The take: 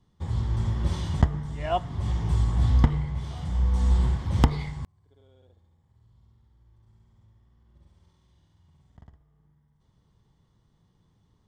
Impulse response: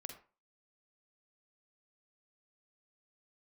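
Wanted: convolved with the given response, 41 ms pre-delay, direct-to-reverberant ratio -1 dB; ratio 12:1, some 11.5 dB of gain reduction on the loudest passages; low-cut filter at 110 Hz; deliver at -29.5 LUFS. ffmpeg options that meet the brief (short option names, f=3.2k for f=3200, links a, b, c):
-filter_complex "[0:a]highpass=110,acompressor=threshold=-31dB:ratio=12,asplit=2[a][b];[1:a]atrim=start_sample=2205,adelay=41[c];[b][c]afir=irnorm=-1:irlink=0,volume=5dB[d];[a][d]amix=inputs=2:normalize=0,volume=4dB"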